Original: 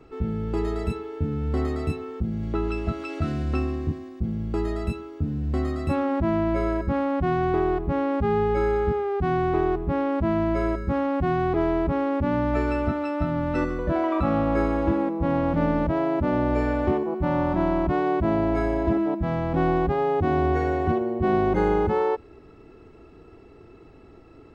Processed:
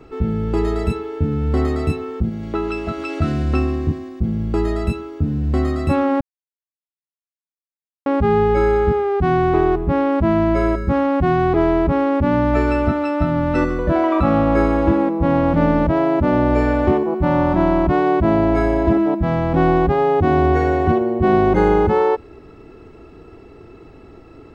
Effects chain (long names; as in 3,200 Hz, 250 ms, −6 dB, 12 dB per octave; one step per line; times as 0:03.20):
0:02.29–0:02.98: low-shelf EQ 170 Hz −11.5 dB
0:06.21–0:08.06: silence
level +7 dB